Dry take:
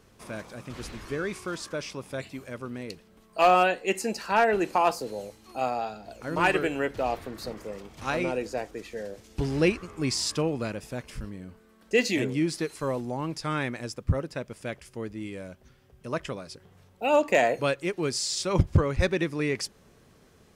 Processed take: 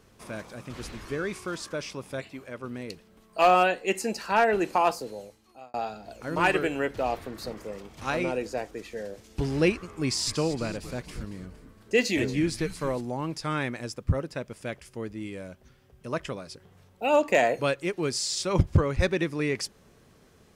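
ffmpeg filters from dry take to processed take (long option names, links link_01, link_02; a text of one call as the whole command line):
ffmpeg -i in.wav -filter_complex "[0:a]asettb=1/sr,asplit=3[link_01][link_02][link_03];[link_01]atrim=end=2.204[link_04];[link_02]atrim=start=2.2:end=2.64,asetpts=PTS-STARTPTS,afade=type=in:duration=0.004:curve=qsin,afade=type=out:start_time=0.436:duration=0.004:curve=qsin,bass=frequency=250:gain=-5,treble=frequency=4000:gain=-6[link_05];[link_03]atrim=start=2.636[link_06];[link_04][link_05]acrossfade=duration=0.004:curve1=hsin:curve2=qsin[link_07];[link_07][link_06]acrossfade=duration=0.004:curve1=qsin:curve2=hsin,asettb=1/sr,asplit=3[link_08][link_09][link_10];[link_08]atrim=end=10.044[link_11];[link_09]atrim=start=10.04:end=13.01,asetpts=PTS-STARTPTS,afade=type=in:duration=0.004:curve=qsin,afade=type=out:start_time=2.966:duration=0.004:curve=qsin,asplit=6[link_12][link_13][link_14][link_15][link_16][link_17];[link_13]adelay=230,afreqshift=-150,volume=-13dB[link_18];[link_14]adelay=460,afreqshift=-300,volume=-19dB[link_19];[link_15]adelay=690,afreqshift=-450,volume=-25dB[link_20];[link_16]adelay=920,afreqshift=-600,volume=-31.1dB[link_21];[link_17]adelay=1150,afreqshift=-750,volume=-37.1dB[link_22];[link_12][link_18][link_19][link_20][link_21][link_22]amix=inputs=6:normalize=0,atrim=end_sample=130977[link_23];[link_10]atrim=start=13.006[link_24];[link_11][link_23]acrossfade=duration=0.004:curve1=hsin:curve2=qsin[link_25];[link_25][link_24]acrossfade=duration=0.004:curve1=qsin:curve2=hsin,asplit=2[link_26][link_27];[link_26]atrim=end=5.74,asetpts=PTS-STARTPTS,afade=type=out:start_time=4.84:duration=0.9[link_28];[link_27]atrim=start=5.74,asetpts=PTS-STARTPTS,afade=type=in:duration=0.004:curve=hsin[link_29];[link_28][link_29]concat=n=2:v=0:a=1" out.wav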